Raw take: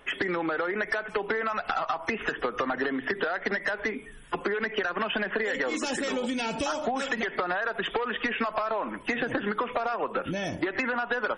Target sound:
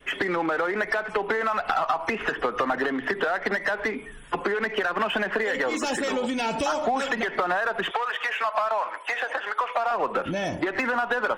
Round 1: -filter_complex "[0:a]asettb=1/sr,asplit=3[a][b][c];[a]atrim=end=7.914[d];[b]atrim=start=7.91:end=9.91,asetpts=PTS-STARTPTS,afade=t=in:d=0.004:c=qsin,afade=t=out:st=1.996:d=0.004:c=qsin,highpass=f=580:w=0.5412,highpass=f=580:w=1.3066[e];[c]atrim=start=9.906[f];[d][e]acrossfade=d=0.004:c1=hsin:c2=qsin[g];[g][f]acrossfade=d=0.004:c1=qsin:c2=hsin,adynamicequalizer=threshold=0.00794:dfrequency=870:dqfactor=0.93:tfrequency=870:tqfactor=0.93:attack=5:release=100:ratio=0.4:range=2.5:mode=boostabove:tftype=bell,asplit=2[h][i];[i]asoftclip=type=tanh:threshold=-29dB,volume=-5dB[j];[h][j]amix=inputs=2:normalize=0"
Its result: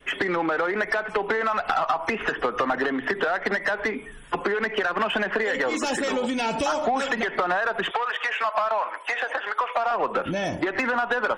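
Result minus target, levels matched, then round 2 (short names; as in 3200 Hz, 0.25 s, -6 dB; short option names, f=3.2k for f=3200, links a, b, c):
soft clip: distortion -4 dB
-filter_complex "[0:a]asettb=1/sr,asplit=3[a][b][c];[a]atrim=end=7.914[d];[b]atrim=start=7.91:end=9.91,asetpts=PTS-STARTPTS,afade=t=in:d=0.004:c=qsin,afade=t=out:st=1.996:d=0.004:c=qsin,highpass=f=580:w=0.5412,highpass=f=580:w=1.3066[e];[c]atrim=start=9.906[f];[d][e]acrossfade=d=0.004:c1=hsin:c2=qsin[g];[g][f]acrossfade=d=0.004:c1=qsin:c2=hsin,adynamicequalizer=threshold=0.00794:dfrequency=870:dqfactor=0.93:tfrequency=870:tqfactor=0.93:attack=5:release=100:ratio=0.4:range=2.5:mode=boostabove:tftype=bell,asplit=2[h][i];[i]asoftclip=type=tanh:threshold=-36.5dB,volume=-5dB[j];[h][j]amix=inputs=2:normalize=0"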